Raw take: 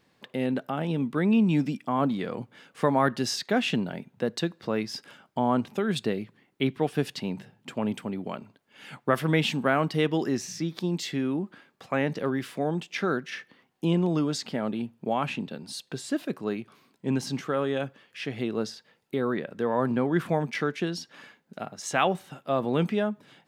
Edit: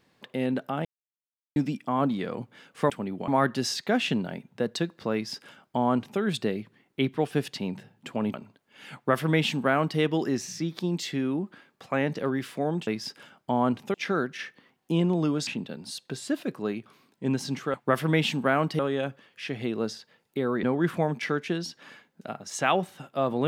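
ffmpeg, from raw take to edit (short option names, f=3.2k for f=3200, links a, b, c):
-filter_complex "[0:a]asplit=12[a][b][c][d][e][f][g][h][i][j][k][l];[a]atrim=end=0.85,asetpts=PTS-STARTPTS,afade=t=out:st=0.846:d=0.004:c=hsin[m];[b]atrim=start=0.85:end=1.56,asetpts=PTS-STARTPTS,volume=0[n];[c]atrim=start=1.56:end=2.902,asetpts=PTS-STARTPTS,afade=t=in:d=0.004:c=hsin[o];[d]atrim=start=7.958:end=8.342[p];[e]atrim=start=2.898:end=7.962[q];[f]atrim=start=8.338:end=12.872[r];[g]atrim=start=4.748:end=5.822[s];[h]atrim=start=12.868:end=14.402[t];[i]atrim=start=15.288:end=17.562[u];[j]atrim=start=8.938:end=9.992[v];[k]atrim=start=17.558:end=19.402[w];[l]atrim=start=19.948[x];[m][n][o]concat=n=3:v=0:a=1[y];[y][p]acrossfade=d=0.004:c1=hsin:c2=hsin[z];[z][q]acrossfade=d=0.004:c1=hsin:c2=hsin[aa];[aa][r]acrossfade=d=0.004:c1=hsin:c2=hsin[ab];[ab][s]acrossfade=d=0.004:c1=hsin:c2=hsin[ac];[ac][t]acrossfade=d=0.004:c1=hsin:c2=hsin[ad];[ad][u]acrossfade=d=0.004:c1=hsin:c2=hsin[ae];[ae][v]acrossfade=d=0.004:c1=hsin:c2=hsin[af];[af][w]acrossfade=d=0.004:c1=hsin:c2=hsin[ag];[ag][x]acrossfade=d=0.004:c1=hsin:c2=hsin"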